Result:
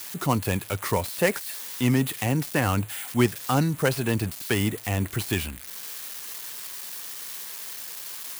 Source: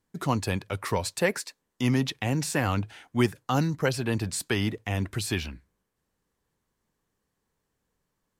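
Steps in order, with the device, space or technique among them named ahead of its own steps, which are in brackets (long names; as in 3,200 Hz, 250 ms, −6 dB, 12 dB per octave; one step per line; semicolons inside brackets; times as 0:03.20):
budget class-D amplifier (gap after every zero crossing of 0.1 ms; spike at every zero crossing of −24 dBFS)
level +2.5 dB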